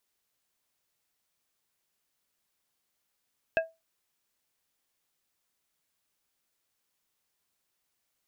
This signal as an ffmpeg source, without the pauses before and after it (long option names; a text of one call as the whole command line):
ffmpeg -f lavfi -i "aevalsrc='0.106*pow(10,-3*t/0.22)*sin(2*PI*652*t)+0.0708*pow(10,-3*t/0.116)*sin(2*PI*1630*t)+0.0473*pow(10,-3*t/0.083)*sin(2*PI*2608*t)':duration=0.89:sample_rate=44100" out.wav